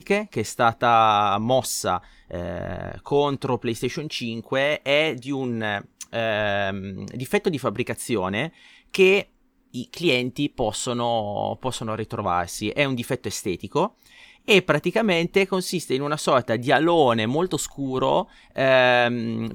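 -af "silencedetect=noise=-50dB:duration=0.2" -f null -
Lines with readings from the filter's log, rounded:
silence_start: 9.28
silence_end: 9.74 | silence_duration: 0.46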